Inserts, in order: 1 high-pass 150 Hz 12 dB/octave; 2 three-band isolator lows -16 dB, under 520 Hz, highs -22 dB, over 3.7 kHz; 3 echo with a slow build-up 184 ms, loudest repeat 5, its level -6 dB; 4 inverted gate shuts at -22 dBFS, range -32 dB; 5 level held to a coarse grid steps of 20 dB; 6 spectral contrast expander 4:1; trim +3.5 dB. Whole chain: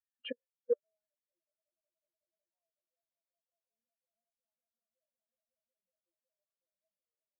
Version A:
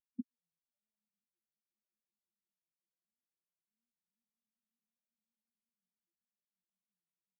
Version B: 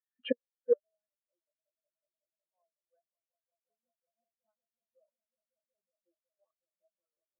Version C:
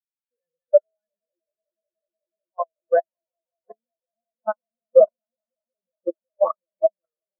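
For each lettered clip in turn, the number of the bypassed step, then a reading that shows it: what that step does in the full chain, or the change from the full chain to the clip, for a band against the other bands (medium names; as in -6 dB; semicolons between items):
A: 2, crest factor change +3.0 dB; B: 5, momentary loudness spread change -5 LU; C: 4, momentary loudness spread change +6 LU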